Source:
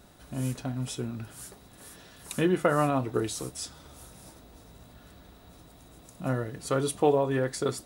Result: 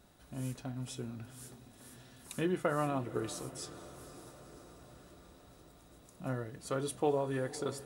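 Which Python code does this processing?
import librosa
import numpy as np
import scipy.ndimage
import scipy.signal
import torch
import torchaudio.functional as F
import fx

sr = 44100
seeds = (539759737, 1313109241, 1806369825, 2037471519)

y = fx.echo_diffused(x, sr, ms=500, feedback_pct=66, wet_db=-16)
y = y * 10.0 ** (-8.0 / 20.0)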